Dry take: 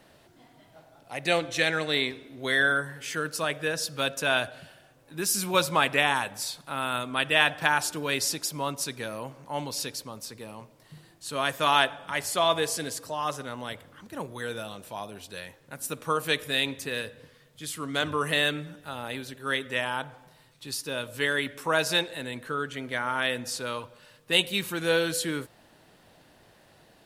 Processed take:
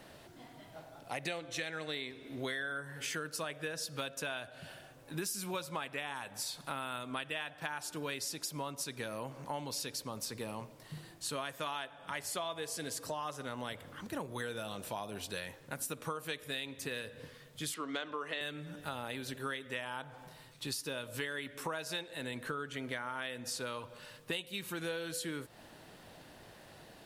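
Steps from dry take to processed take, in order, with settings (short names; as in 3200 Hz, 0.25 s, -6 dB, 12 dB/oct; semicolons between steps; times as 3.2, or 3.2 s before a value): 17.74–18.41 three-band isolator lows -24 dB, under 230 Hz, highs -23 dB, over 6000 Hz; compressor 12:1, threshold -38 dBFS, peak gain reduction 22.5 dB; gain +2.5 dB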